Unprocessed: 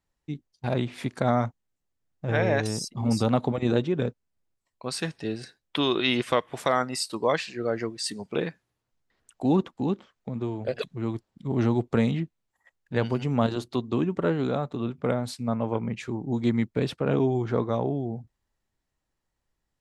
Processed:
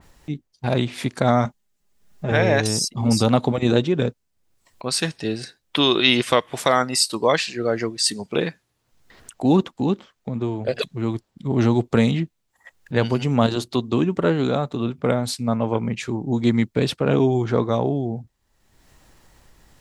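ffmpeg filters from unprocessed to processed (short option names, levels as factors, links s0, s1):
-filter_complex "[0:a]asettb=1/sr,asplit=3[s0][s1][s2];[s0]atrim=end=1.454[s3];[s1]atrim=start=1.45:end=2.32,asetpts=PTS-STARTPTS,afade=t=in:d=0.004:c=qsin,afade=t=out:st=0.866:d=0.004:c=qsin,aecho=1:1:4.9:0.65,atrim=end_sample=38367[s4];[s2]atrim=start=2.316[s5];[s3][s4]acrossfade=d=0.004:c1=hsin:c2=qsin[s6];[s6][s5]acrossfade=d=0.004:c1=qsin:c2=hsin,acompressor=mode=upward:threshold=0.0112:ratio=2.5,adynamicequalizer=threshold=0.00794:dfrequency=2700:dqfactor=0.7:tfrequency=2700:tqfactor=0.7:attack=5:release=100:ratio=0.375:range=3:mode=boostabove:tftype=highshelf,volume=1.88"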